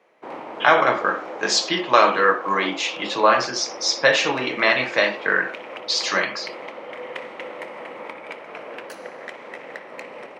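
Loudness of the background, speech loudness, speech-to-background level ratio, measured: −35.5 LKFS, −20.0 LKFS, 15.5 dB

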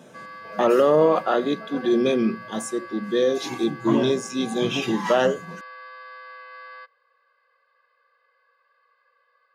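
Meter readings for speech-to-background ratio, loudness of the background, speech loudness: 18.5 dB, −40.5 LKFS, −22.0 LKFS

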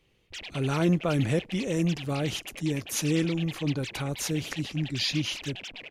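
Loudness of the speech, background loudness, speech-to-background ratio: −29.0 LKFS, −40.0 LKFS, 11.0 dB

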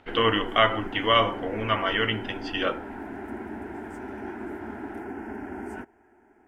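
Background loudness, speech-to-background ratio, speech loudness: −37.0 LKFS, 12.0 dB, −25.0 LKFS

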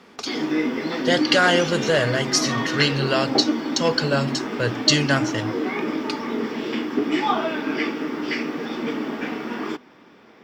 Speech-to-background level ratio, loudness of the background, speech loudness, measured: 4.5 dB, −26.0 LKFS, −21.5 LKFS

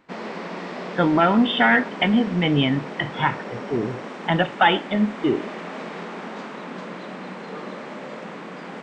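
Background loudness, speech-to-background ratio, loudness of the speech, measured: −34.0 LKFS, 13.0 dB, −21.0 LKFS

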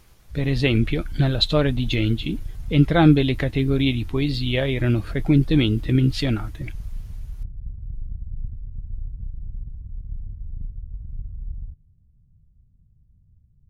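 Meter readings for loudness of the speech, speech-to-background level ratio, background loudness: −21.0 LKFS, 16.0 dB, −37.0 LKFS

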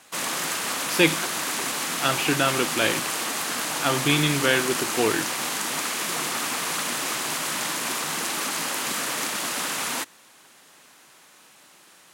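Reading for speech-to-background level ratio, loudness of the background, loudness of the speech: 2.0 dB, −26.0 LKFS, −24.0 LKFS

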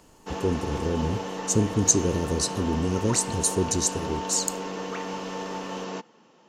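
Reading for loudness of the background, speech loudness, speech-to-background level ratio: −33.5 LKFS, −25.5 LKFS, 8.0 dB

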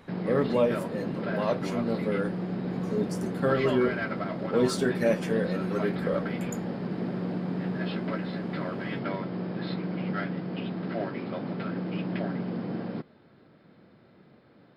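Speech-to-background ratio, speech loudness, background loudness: 3.0 dB, −29.5 LKFS, −32.5 LKFS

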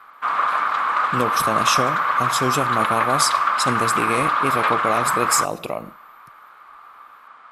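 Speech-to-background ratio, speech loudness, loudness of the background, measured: −4.5 dB, −24.5 LKFS, −20.0 LKFS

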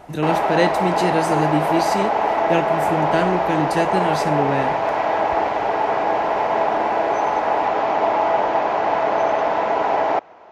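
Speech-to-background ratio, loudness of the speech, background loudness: −3.5 dB, −23.5 LKFS, −20.0 LKFS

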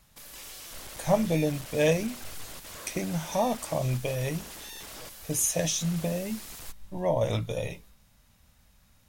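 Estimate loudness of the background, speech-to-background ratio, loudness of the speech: −41.5 LKFS, 12.5 dB, −29.0 LKFS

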